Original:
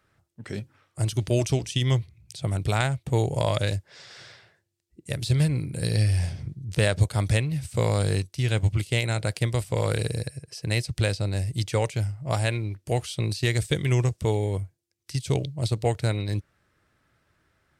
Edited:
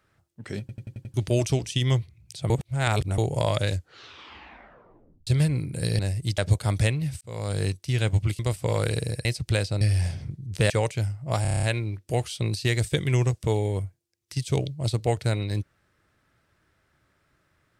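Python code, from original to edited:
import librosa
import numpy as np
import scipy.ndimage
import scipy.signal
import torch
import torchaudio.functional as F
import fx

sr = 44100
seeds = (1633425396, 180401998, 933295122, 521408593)

y = fx.edit(x, sr, fx.stutter_over(start_s=0.6, slice_s=0.09, count=6),
    fx.reverse_span(start_s=2.5, length_s=0.68),
    fx.tape_stop(start_s=3.68, length_s=1.59),
    fx.swap(start_s=5.99, length_s=0.89, other_s=11.3, other_length_s=0.39),
    fx.fade_in_span(start_s=7.71, length_s=0.51),
    fx.cut(start_s=8.89, length_s=0.58),
    fx.cut(start_s=10.33, length_s=0.41),
    fx.stutter(start_s=12.41, slice_s=0.03, count=8), tone=tone)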